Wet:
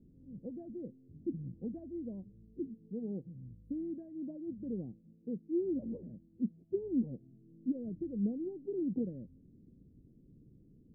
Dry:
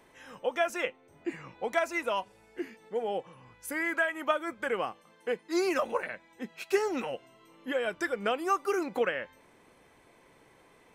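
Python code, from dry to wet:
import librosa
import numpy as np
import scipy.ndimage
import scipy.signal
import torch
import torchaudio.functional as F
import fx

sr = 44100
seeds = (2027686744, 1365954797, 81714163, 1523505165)

y = scipy.signal.sosfilt(scipy.signal.cheby2(4, 70, 1100.0, 'lowpass', fs=sr, output='sos'), x)
y = y * librosa.db_to_amplitude(9.5)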